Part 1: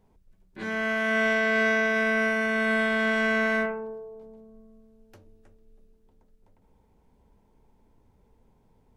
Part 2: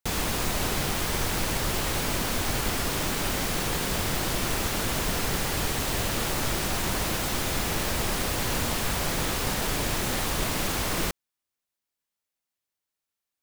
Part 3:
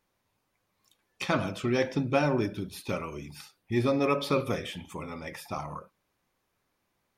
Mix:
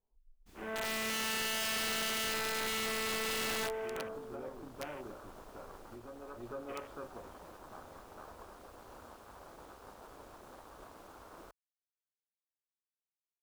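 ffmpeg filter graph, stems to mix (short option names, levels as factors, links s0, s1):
-filter_complex "[0:a]lowpass=1000,volume=0.75,asplit=2[s0][s1];[s1]volume=0.224[s2];[1:a]highpass=f=120:p=1,adelay=400,volume=0.282[s3];[2:a]bass=f=250:g=2,treble=f=4000:g=-9,adelay=2200,volume=0.282,asplit=2[s4][s5];[s5]volume=0.596[s6];[s3][s4]amix=inputs=2:normalize=0,agate=range=0.0224:threshold=0.02:ratio=3:detection=peak,acompressor=threshold=0.01:ratio=8,volume=1[s7];[s2][s6]amix=inputs=2:normalize=0,aecho=0:1:460:1[s8];[s0][s7][s8]amix=inputs=3:normalize=0,afwtdn=0.00562,equalizer=f=150:w=0.78:g=-14.5,aeval=exprs='(mod(31.6*val(0)+1,2)-1)/31.6':c=same"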